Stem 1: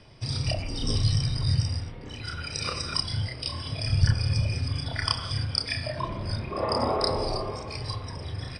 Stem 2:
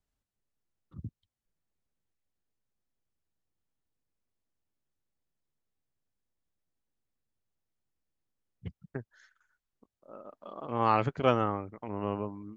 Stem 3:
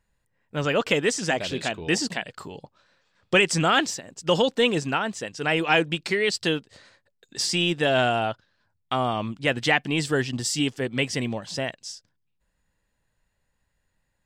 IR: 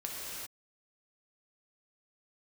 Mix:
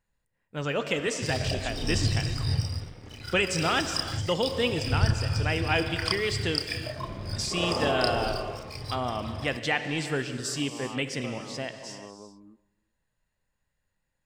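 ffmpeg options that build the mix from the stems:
-filter_complex "[0:a]bandreject=f=970:w=12,aeval=exprs='sgn(val(0))*max(abs(val(0))-0.00596,0)':c=same,adelay=1000,volume=-2.5dB,asplit=2[a][b];[b]volume=-20dB[c];[1:a]lowpass=1.4k,equalizer=f=110:t=o:w=0.64:g=-9.5,acompressor=threshold=-35dB:ratio=3,volume=-6.5dB,asplit=2[d][e];[e]volume=-22.5dB[f];[2:a]volume=-8.5dB,asplit=2[g][h];[h]volume=-6.5dB[i];[3:a]atrim=start_sample=2205[j];[c][f][i]amix=inputs=3:normalize=0[k];[k][j]afir=irnorm=-1:irlink=0[l];[a][d][g][l]amix=inputs=4:normalize=0"

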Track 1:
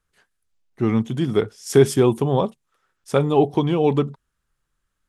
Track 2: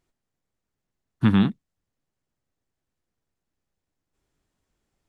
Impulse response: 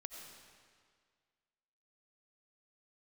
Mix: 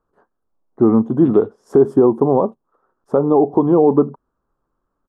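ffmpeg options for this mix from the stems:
-filter_complex "[0:a]firequalizer=gain_entry='entry(120,0);entry(260,12);entry(1100,10);entry(2200,-22)':delay=0.05:min_phase=1,volume=0dB,asplit=2[a][b];[1:a]volume=-17dB[c];[b]apad=whole_len=224050[d];[c][d]sidechaincompress=threshold=-9dB:ratio=8:attack=16:release=410[e];[a][e]amix=inputs=2:normalize=0,alimiter=limit=-3.5dB:level=0:latency=1:release=249"

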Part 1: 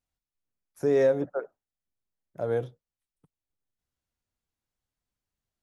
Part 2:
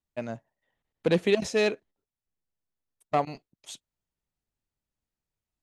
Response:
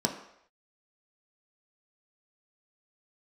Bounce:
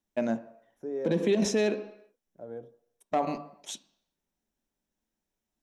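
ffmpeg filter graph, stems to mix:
-filter_complex "[0:a]tiltshelf=f=1.4k:g=5,volume=-19.5dB,asplit=3[a][b][c];[b]volume=-16.5dB[d];[1:a]bandreject=f=50:t=h:w=6,bandreject=f=100:t=h:w=6,bandreject=f=150:t=h:w=6,volume=1.5dB,asplit=2[e][f];[f]volume=-13dB[g];[c]apad=whole_len=248176[h];[e][h]sidechaincompress=threshold=-44dB:ratio=8:attack=16:release=232[i];[2:a]atrim=start_sample=2205[j];[d][g]amix=inputs=2:normalize=0[k];[k][j]afir=irnorm=-1:irlink=0[l];[a][i][l]amix=inputs=3:normalize=0,alimiter=limit=-17dB:level=0:latency=1:release=76"

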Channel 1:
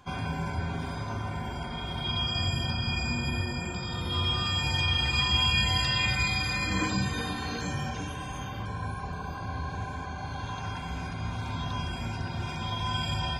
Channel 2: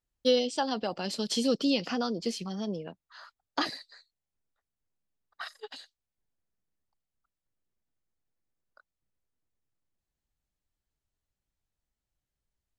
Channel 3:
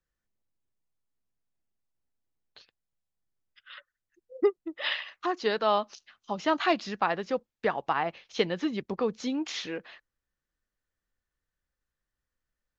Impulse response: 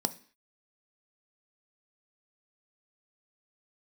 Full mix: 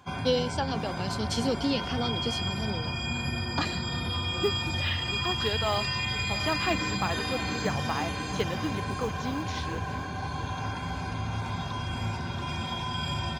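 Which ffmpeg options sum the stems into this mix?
-filter_complex "[0:a]acompressor=threshold=-29dB:ratio=6,volume=1dB,asplit=2[a][b];[b]volume=-4.5dB[c];[1:a]volume=-1.5dB[d];[2:a]acrusher=bits=7:mode=log:mix=0:aa=0.000001,volume=-4.5dB,asplit=2[e][f];[f]volume=-16dB[g];[c][g]amix=inputs=2:normalize=0,aecho=0:1:682|1364|2046|2728|3410|4092|4774|5456:1|0.56|0.314|0.176|0.0983|0.0551|0.0308|0.0173[h];[a][d][e][h]amix=inputs=4:normalize=0,highpass=69"

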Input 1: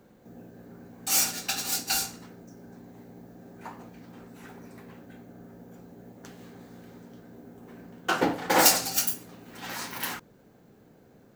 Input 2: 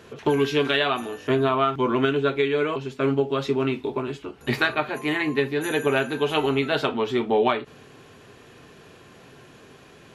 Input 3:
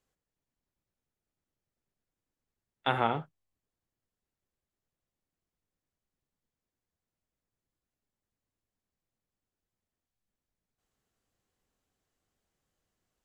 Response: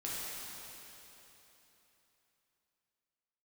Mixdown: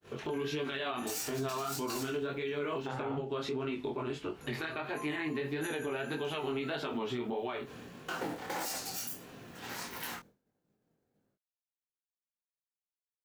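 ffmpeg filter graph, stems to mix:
-filter_complex "[0:a]acrusher=bits=4:mode=log:mix=0:aa=0.000001,volume=-2.5dB[a];[1:a]agate=range=-33dB:threshold=-44dB:ratio=3:detection=peak,acompressor=threshold=-23dB:ratio=6,volume=2dB[b];[2:a]lowpass=f=1.3k:p=1,volume=-2dB,asplit=2[c][d];[d]apad=whole_len=500709[e];[a][e]sidechaincompress=threshold=-53dB:ratio=8:attack=16:release=1150[f];[f][b]amix=inputs=2:normalize=0,acompressor=threshold=-33dB:ratio=1.5,volume=0dB[g];[c][g]amix=inputs=2:normalize=0,agate=range=-33dB:threshold=-47dB:ratio=3:detection=peak,flanger=delay=19:depth=6.1:speed=1.6,alimiter=level_in=3dB:limit=-24dB:level=0:latency=1:release=52,volume=-3dB"

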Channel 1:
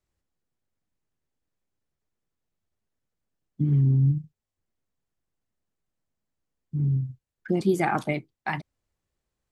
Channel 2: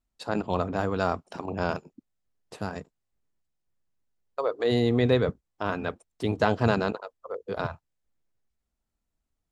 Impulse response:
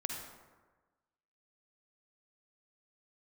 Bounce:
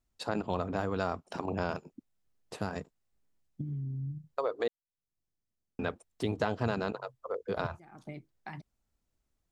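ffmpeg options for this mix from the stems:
-filter_complex "[0:a]equalizer=f=5.9k:w=1.3:g=7.5,acompressor=threshold=-30dB:ratio=10,lowshelf=f=430:g=8,volume=-11.5dB[a];[1:a]volume=0.5dB,asplit=3[b][c][d];[b]atrim=end=4.68,asetpts=PTS-STARTPTS,afade=t=out:st=4.676:d=0.004:c=hsin[e];[c]atrim=start=4.68:end=5.79,asetpts=PTS-STARTPTS,volume=0[f];[d]atrim=start=5.79,asetpts=PTS-STARTPTS,afade=t=in:d=0.004:c=hsin[g];[e][f][g]concat=n=3:v=0:a=1,asplit=2[h][i];[i]apad=whole_len=419409[j];[a][j]sidechaincompress=threshold=-48dB:ratio=4:attack=5.1:release=277[k];[k][h]amix=inputs=2:normalize=0,acompressor=threshold=-30dB:ratio=2.5"

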